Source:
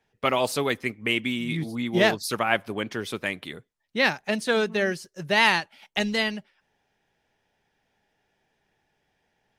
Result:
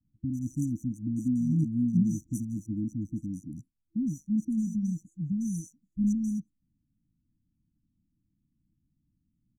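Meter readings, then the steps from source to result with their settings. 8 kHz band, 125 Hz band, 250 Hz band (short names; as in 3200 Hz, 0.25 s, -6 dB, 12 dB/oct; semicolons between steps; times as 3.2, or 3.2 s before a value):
-7.5 dB, +4.5 dB, +2.5 dB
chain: Wiener smoothing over 15 samples; comb 1 ms, depth 94%; dispersion highs, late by 0.1 s, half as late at 870 Hz; FFT band-reject 330–5800 Hz; high shelf 7300 Hz -11 dB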